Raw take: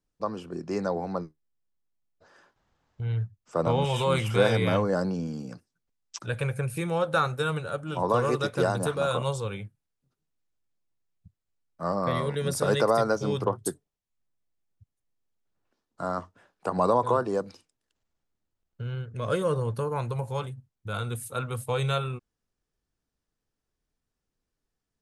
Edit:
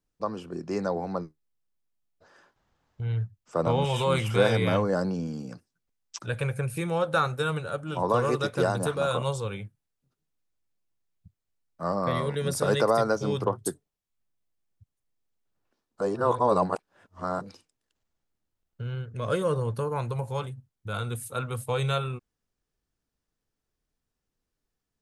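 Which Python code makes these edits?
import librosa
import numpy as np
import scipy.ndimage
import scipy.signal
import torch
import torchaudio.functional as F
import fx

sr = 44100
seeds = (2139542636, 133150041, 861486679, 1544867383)

y = fx.edit(x, sr, fx.reverse_span(start_s=16.01, length_s=1.4), tone=tone)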